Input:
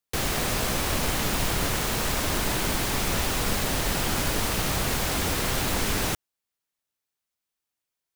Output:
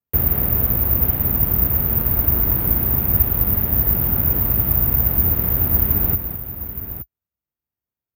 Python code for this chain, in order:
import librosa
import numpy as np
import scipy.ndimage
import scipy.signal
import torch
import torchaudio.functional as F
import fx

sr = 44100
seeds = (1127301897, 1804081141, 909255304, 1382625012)

p1 = scipy.signal.sosfilt(scipy.signal.butter(4, 51.0, 'highpass', fs=sr, output='sos'), x)
p2 = fx.riaa(p1, sr, side='playback')
p3 = fx.rider(p2, sr, range_db=10, speed_s=0.5)
p4 = fx.air_absorb(p3, sr, metres=370.0)
p5 = p4 + fx.echo_multitap(p4, sr, ms=(210, 869), db=(-10.0, -11.0), dry=0)
p6 = (np.kron(p5[::3], np.eye(3)[0]) * 3)[:len(p5)]
y = p6 * librosa.db_to_amplitude(-4.0)